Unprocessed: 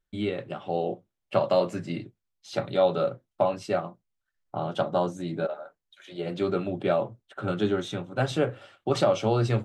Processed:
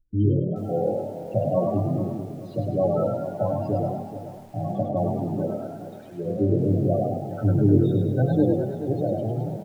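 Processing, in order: fade out at the end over 1.01 s; tilt EQ -3.5 dB/octave; feedback comb 100 Hz, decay 0.29 s, harmonics odd, mix 80%; loudest bins only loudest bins 16; frequency-shifting echo 102 ms, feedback 52%, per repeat +37 Hz, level -4 dB; bit-crushed delay 429 ms, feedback 35%, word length 9-bit, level -12 dB; trim +7.5 dB

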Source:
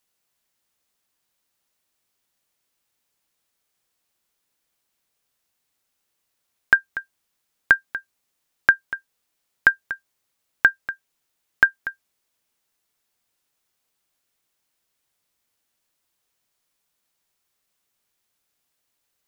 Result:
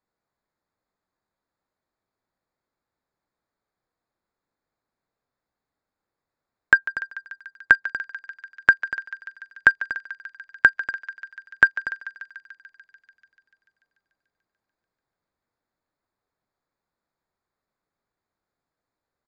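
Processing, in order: local Wiener filter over 15 samples; resampled via 16 kHz; thinning echo 146 ms, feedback 81%, high-pass 870 Hz, level -14 dB; trim +1 dB

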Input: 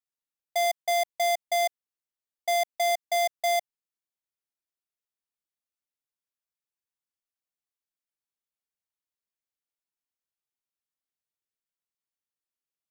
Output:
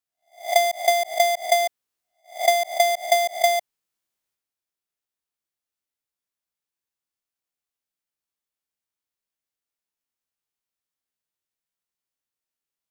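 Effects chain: reverse spectral sustain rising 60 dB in 0.35 s; transient shaper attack +11 dB, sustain +7 dB; trim +1.5 dB

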